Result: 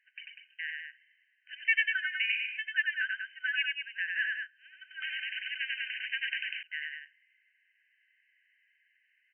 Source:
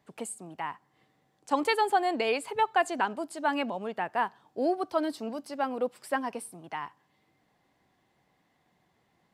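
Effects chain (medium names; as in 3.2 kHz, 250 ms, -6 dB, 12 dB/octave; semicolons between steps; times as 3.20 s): FFT band-pass 1.5–3.1 kHz; 2.26–3.07 s: tilt EQ -4 dB/octave; loudspeakers at several distances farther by 32 m -3 dB, 67 m -7 dB; 5.02–6.63 s: spectrum-flattening compressor 4:1; trim +5.5 dB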